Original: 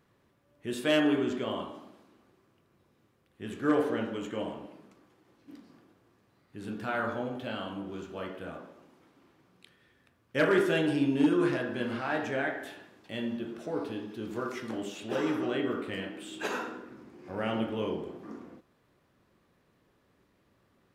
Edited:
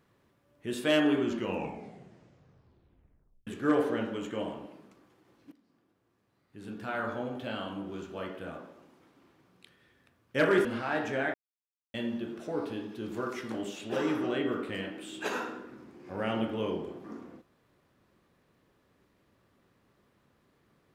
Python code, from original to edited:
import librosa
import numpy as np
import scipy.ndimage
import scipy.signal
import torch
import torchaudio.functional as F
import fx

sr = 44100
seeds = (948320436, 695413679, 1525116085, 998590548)

y = fx.edit(x, sr, fx.tape_stop(start_s=1.2, length_s=2.27),
    fx.fade_in_from(start_s=5.52, length_s=2.0, floor_db=-17.5),
    fx.cut(start_s=10.65, length_s=1.19),
    fx.silence(start_s=12.53, length_s=0.6), tone=tone)